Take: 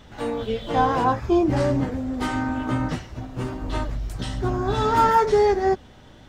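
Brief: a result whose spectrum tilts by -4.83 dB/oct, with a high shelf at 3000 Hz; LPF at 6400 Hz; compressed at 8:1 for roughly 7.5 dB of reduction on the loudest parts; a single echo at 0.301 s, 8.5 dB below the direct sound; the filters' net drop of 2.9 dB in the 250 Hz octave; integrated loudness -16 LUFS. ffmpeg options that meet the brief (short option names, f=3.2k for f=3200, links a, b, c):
-af "lowpass=6.4k,equalizer=f=250:t=o:g=-4,highshelf=f=3k:g=6,acompressor=threshold=-20dB:ratio=8,aecho=1:1:301:0.376,volume=10.5dB"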